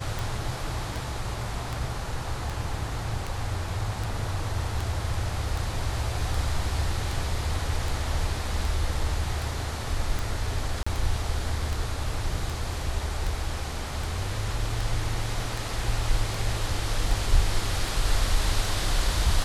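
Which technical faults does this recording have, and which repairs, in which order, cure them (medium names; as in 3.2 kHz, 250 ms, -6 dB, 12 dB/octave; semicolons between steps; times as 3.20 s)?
tick 78 rpm
10.83–10.87 s: dropout 35 ms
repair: de-click; interpolate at 10.83 s, 35 ms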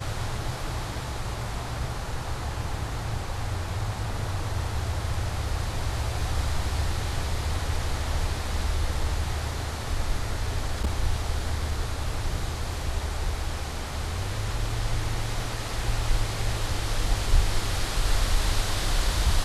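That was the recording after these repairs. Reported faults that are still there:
nothing left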